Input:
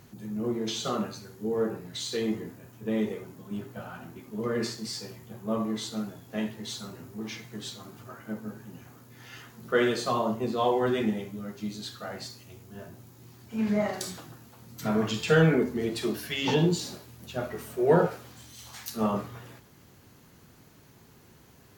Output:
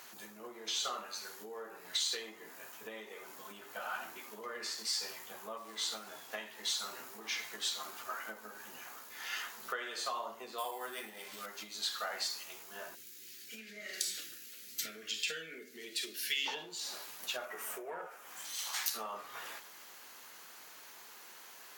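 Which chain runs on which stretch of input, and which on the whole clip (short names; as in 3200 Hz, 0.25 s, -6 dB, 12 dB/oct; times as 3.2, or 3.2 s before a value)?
5.57–6.32 high shelf 8200 Hz -5 dB + compressor 2:1, threshold -35 dBFS + companded quantiser 6-bit
10.58–11.46 sample-rate reducer 12000 Hz + mismatched tape noise reduction encoder only
12.95–16.46 Butterworth band-stop 910 Hz, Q 0.56 + low shelf 140 Hz -5 dB
17.45–18.45 self-modulated delay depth 0.081 ms + bell 4200 Hz -10.5 dB 0.78 oct
whole clip: compressor 16:1, threshold -38 dBFS; HPF 910 Hz 12 dB/oct; gain +8 dB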